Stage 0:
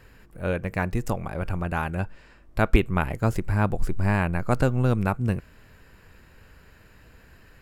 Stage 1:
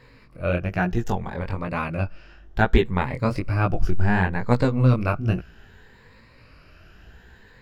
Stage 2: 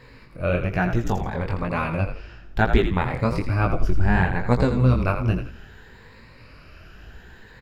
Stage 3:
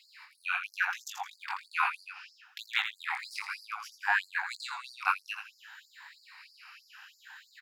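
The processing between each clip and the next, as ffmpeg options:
-af "afftfilt=real='re*pow(10,9/40*sin(2*PI*(0.98*log(max(b,1)*sr/1024/100)/log(2)-(0.65)*(pts-256)/sr)))':imag='im*pow(10,9/40*sin(2*PI*(0.98*log(max(b,1)*sr/1024/100)/log(2)-(0.65)*(pts-256)/sr)))':win_size=1024:overlap=0.75,flanger=delay=16.5:depth=7.3:speed=1.1,highshelf=f=6.6k:t=q:w=1.5:g=-9.5,volume=4dB"
-filter_complex "[0:a]asplit=2[a][b];[b]acompressor=threshold=-28dB:ratio=6,volume=-1dB[c];[a][c]amix=inputs=2:normalize=0,asplit=5[d][e][f][g][h];[e]adelay=83,afreqshift=-58,volume=-8dB[i];[f]adelay=166,afreqshift=-116,volume=-17.4dB[j];[g]adelay=249,afreqshift=-174,volume=-26.7dB[k];[h]adelay=332,afreqshift=-232,volume=-36.1dB[l];[d][i][j][k][l]amix=inputs=5:normalize=0,volume=-2dB"
-af "afftfilt=real='re*gte(b*sr/1024,720*pow(4300/720,0.5+0.5*sin(2*PI*3.1*pts/sr)))':imag='im*gte(b*sr/1024,720*pow(4300/720,0.5+0.5*sin(2*PI*3.1*pts/sr)))':win_size=1024:overlap=0.75,volume=1.5dB"

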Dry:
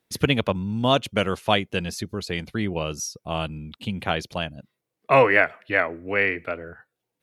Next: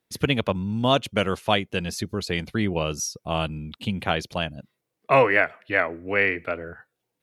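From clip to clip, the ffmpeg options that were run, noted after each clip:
-af "dynaudnorm=f=150:g=3:m=5.5dB,volume=-3.5dB"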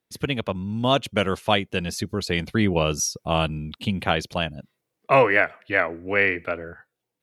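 -af "dynaudnorm=f=170:g=9:m=11.5dB,volume=-3.5dB"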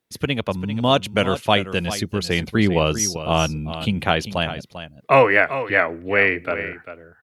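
-af "aecho=1:1:395:0.251,volume=3dB"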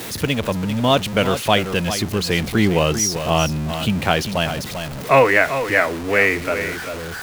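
-af "aeval=exprs='val(0)+0.5*0.0596*sgn(val(0))':c=same"

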